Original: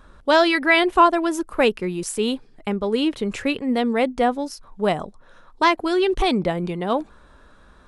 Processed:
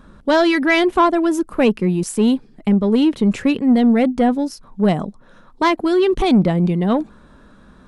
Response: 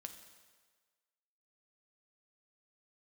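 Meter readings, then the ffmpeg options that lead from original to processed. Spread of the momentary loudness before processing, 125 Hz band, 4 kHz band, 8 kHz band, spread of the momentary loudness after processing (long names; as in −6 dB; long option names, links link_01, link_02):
10 LU, +11.0 dB, −1.0 dB, +1.0 dB, 6 LU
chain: -af "equalizer=frequency=200:width=1:gain=12,acontrast=48,volume=-5dB"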